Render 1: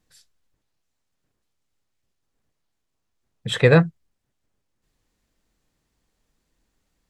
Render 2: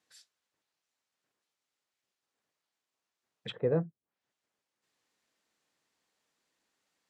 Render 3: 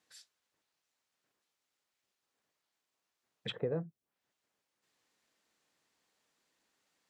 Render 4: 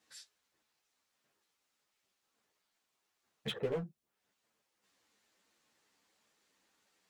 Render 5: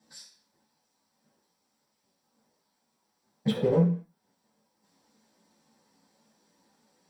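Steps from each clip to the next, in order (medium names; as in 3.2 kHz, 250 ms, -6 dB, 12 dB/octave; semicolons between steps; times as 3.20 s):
frequency weighting A; low-pass that closes with the level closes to 370 Hz, closed at -26 dBFS; trim -3 dB
compression 6:1, threshold -33 dBFS, peak gain reduction 9 dB; trim +1.5 dB
in parallel at -5 dB: wavefolder -39 dBFS; on the sum: three-phase chorus; trim +2.5 dB
reverberation RT60 0.45 s, pre-delay 3 ms, DRR -3.5 dB; trim -2.5 dB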